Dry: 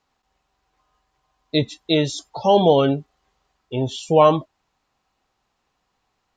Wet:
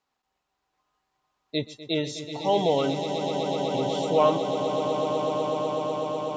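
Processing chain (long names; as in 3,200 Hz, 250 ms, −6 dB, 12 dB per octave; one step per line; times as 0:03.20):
low-shelf EQ 99 Hz −11.5 dB
on a send: echo that builds up and dies away 124 ms, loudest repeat 8, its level −10.5 dB
on the sum: level −7.5 dB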